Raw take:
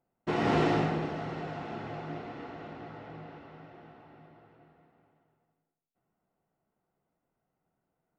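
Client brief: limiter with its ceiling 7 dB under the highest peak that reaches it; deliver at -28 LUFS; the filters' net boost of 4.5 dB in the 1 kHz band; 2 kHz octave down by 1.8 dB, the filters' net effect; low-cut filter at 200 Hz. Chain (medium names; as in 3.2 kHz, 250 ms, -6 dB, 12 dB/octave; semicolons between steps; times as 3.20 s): high-pass 200 Hz; peaking EQ 1 kHz +7.5 dB; peaking EQ 2 kHz -5 dB; trim +7 dB; peak limiter -14.5 dBFS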